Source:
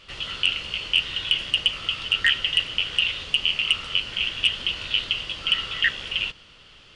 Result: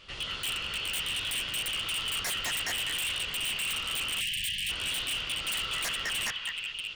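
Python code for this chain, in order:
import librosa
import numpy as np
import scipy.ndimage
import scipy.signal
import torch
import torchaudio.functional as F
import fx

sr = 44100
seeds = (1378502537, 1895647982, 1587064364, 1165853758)

y = fx.echo_stepped(x, sr, ms=210, hz=1200.0, octaves=0.7, feedback_pct=70, wet_db=-0.5)
y = 10.0 ** (-23.5 / 20.0) * (np.abs((y / 10.0 ** (-23.5 / 20.0) + 3.0) % 4.0 - 2.0) - 1.0)
y = fx.spec_erase(y, sr, start_s=4.21, length_s=0.49, low_hz=220.0, high_hz=1600.0)
y = y * 10.0 ** (-3.0 / 20.0)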